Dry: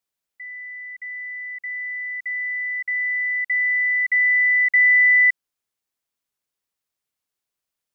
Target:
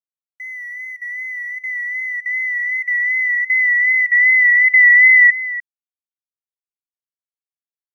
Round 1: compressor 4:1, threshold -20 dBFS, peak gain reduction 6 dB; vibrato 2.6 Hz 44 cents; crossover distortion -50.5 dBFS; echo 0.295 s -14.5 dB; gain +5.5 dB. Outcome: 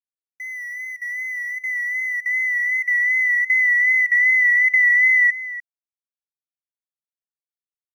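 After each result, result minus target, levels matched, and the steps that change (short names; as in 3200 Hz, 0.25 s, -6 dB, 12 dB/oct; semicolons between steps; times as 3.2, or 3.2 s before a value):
crossover distortion: distortion +11 dB; compressor: peak gain reduction +6 dB
change: crossover distortion -59.5 dBFS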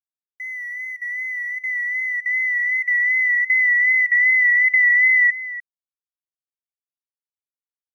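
compressor: peak gain reduction +6 dB
remove: compressor 4:1, threshold -20 dBFS, peak gain reduction 6 dB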